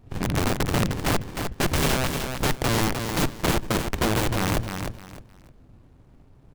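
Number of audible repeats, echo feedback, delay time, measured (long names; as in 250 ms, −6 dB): 3, 25%, 306 ms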